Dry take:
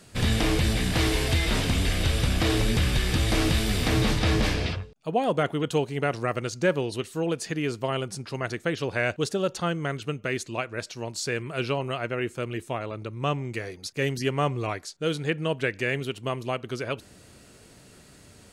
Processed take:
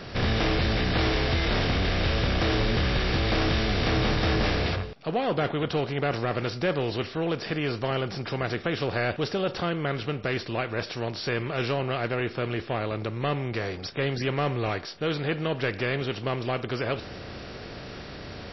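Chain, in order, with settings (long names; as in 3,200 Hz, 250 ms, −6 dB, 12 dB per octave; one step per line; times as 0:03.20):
compressor on every frequency bin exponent 0.6
soft clipping −14 dBFS, distortion −18 dB
level −2.5 dB
MP3 24 kbit/s 16,000 Hz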